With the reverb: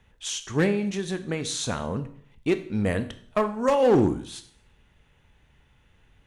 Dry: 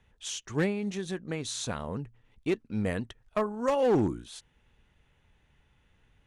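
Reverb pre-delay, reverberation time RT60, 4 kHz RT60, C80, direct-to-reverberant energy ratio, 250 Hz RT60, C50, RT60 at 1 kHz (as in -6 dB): 19 ms, 0.55 s, 0.55 s, 17.0 dB, 10.0 dB, 0.60 s, 14.0 dB, 0.55 s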